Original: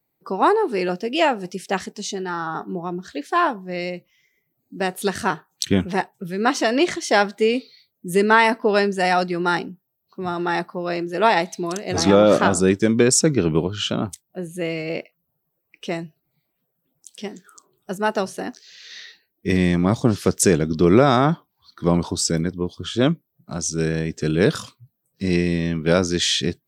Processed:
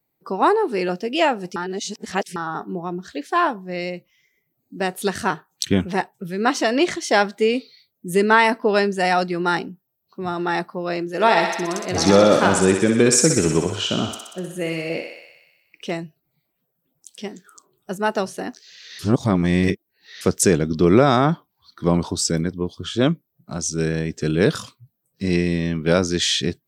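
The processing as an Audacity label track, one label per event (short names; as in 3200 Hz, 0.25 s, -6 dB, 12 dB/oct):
1.560000	2.360000	reverse
11.060000	15.910000	thinning echo 62 ms, feedback 73%, high-pass 440 Hz, level -5 dB
18.990000	20.210000	reverse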